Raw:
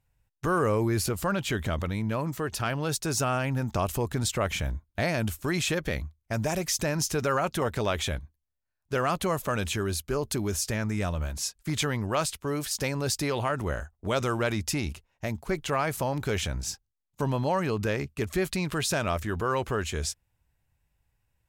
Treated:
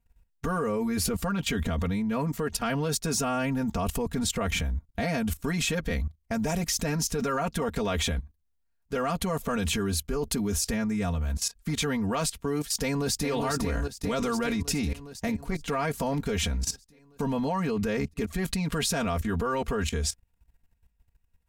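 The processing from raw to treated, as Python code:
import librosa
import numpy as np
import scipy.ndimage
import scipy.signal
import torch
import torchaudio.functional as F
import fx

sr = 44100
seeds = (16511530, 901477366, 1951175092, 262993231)

y = fx.echo_throw(x, sr, start_s=12.78, length_s=0.51, ms=410, feedback_pct=70, wet_db=-5.0)
y = fx.low_shelf(y, sr, hz=240.0, db=8.5)
y = y + 0.95 * np.pad(y, (int(4.3 * sr / 1000.0), 0))[:len(y)]
y = fx.level_steps(y, sr, step_db=15)
y = y * librosa.db_to_amplitude(2.5)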